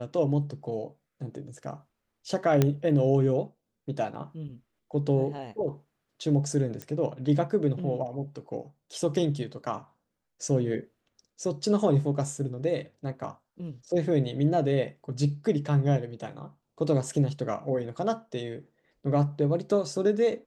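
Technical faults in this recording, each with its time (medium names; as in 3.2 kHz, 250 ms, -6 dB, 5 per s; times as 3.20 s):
2.62 s: pop -9 dBFS
6.82 s: pop -20 dBFS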